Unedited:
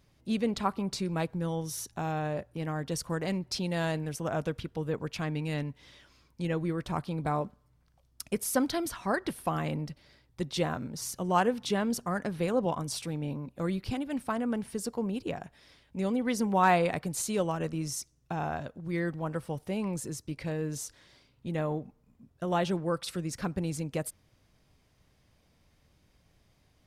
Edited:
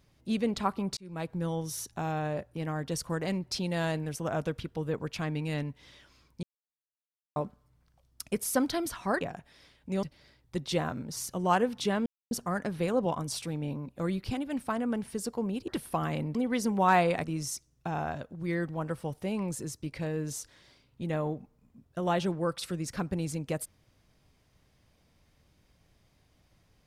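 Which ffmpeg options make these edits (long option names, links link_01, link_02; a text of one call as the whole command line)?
ffmpeg -i in.wav -filter_complex "[0:a]asplit=10[link_01][link_02][link_03][link_04][link_05][link_06][link_07][link_08][link_09][link_10];[link_01]atrim=end=0.97,asetpts=PTS-STARTPTS,afade=type=out:start_time=0.966:duration=0.004:curve=hsin[link_11];[link_02]atrim=start=0.97:end=6.43,asetpts=PTS-STARTPTS,afade=type=in:duration=0.42,afade=type=out:start_time=5.456:duration=0.004:curve=hsin[link_12];[link_03]atrim=start=6.43:end=7.36,asetpts=PTS-STARTPTS,volume=0[link_13];[link_04]atrim=start=7.36:end=9.212,asetpts=PTS-STARTPTS,afade=type=in:duration=0.004:curve=hsin[link_14];[link_05]atrim=start=15.278:end=16.102[link_15];[link_06]atrim=start=9.878:end=11.91,asetpts=PTS-STARTPTS,afade=type=out:start_time=2.028:duration=0.004:curve=hsin,apad=pad_dur=0.25[link_16];[link_07]atrim=start=11.91:end=15.282,asetpts=PTS-STARTPTS,afade=type=in:duration=0.004:curve=hsin[link_17];[link_08]atrim=start=9.208:end=9.882[link_18];[link_09]atrim=start=16.098:end=16.992[link_19];[link_10]atrim=start=17.688[link_20];[link_11][link_12][link_13][link_14]concat=n=4:v=0:a=1[link_21];[link_21][link_15]acrossfade=duration=0.004:curve1=hsin:curve2=hsin[link_22];[link_16][link_17]concat=n=2:v=0:a=1[link_23];[link_22][link_23]acrossfade=duration=0.004:curve1=hsin:curve2=hsin[link_24];[link_24][link_18]acrossfade=duration=0.004:curve1=hsin:curve2=hsin[link_25];[link_25][link_19]acrossfade=duration=0.004:curve1=hsin:curve2=hsin[link_26];[link_26][link_20]acrossfade=duration=0.004:curve1=hsin:curve2=hsin" out.wav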